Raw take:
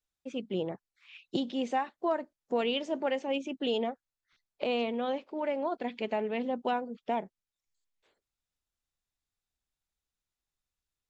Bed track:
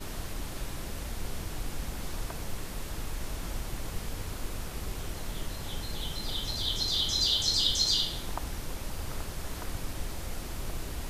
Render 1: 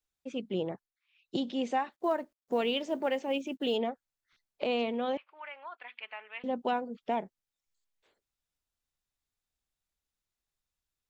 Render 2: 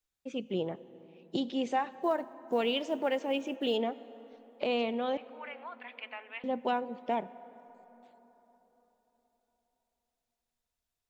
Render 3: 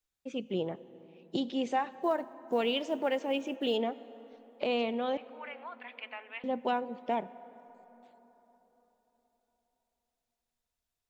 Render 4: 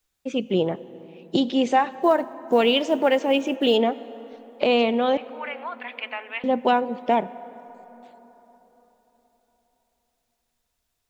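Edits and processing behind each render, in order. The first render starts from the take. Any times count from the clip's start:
0.74–1.41 s: dip -20 dB, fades 0.25 s; 1.92–3.77 s: companded quantiser 8-bit; 5.17–6.44 s: Chebyshev band-pass 1.2–2.8 kHz
plate-style reverb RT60 4.2 s, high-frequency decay 0.45×, DRR 16 dB
no audible change
trim +11 dB

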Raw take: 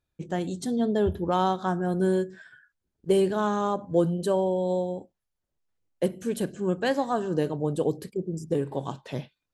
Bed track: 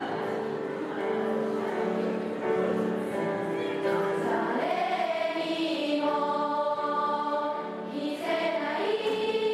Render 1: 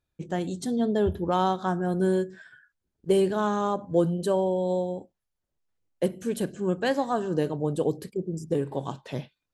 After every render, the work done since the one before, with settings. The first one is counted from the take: no audible change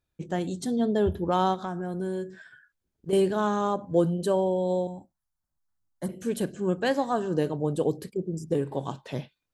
1.54–3.13 s: compression 3:1, threshold -29 dBFS; 4.87–6.09 s: static phaser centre 1.1 kHz, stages 4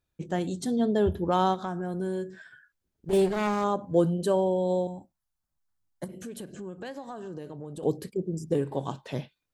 3.09–3.64 s: comb filter that takes the minimum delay 5 ms; 6.04–7.83 s: compression, threshold -36 dBFS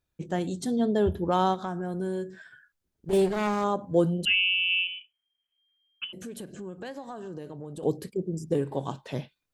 4.25–6.13 s: frequency inversion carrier 3.2 kHz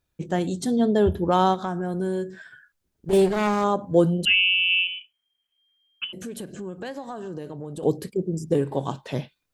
trim +4.5 dB

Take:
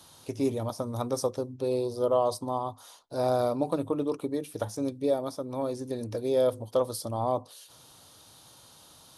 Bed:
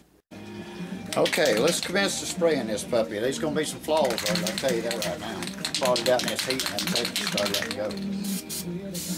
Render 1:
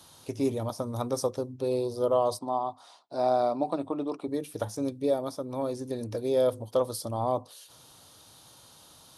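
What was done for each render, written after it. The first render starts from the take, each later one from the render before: 2.39–4.28 s: cabinet simulation 210–7800 Hz, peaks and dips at 480 Hz -7 dB, 710 Hz +6 dB, 1.6 kHz -3 dB, 3.1 kHz -4 dB, 6.5 kHz -10 dB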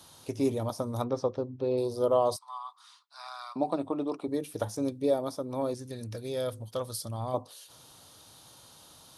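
1.04–1.78 s: distance through air 210 m; 2.36–3.56 s: elliptic high-pass 1.1 kHz, stop band 70 dB; 5.74–7.34 s: high-order bell 510 Hz -8.5 dB 2.4 oct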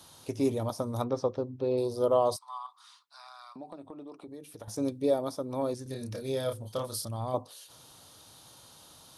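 2.66–4.68 s: compression 2.5:1, threshold -48 dBFS; 5.83–7.05 s: doubling 30 ms -4 dB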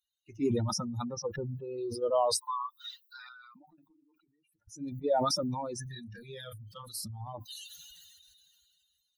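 expander on every frequency bin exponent 3; decay stretcher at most 23 dB/s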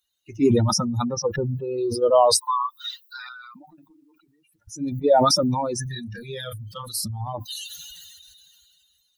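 trim +11 dB

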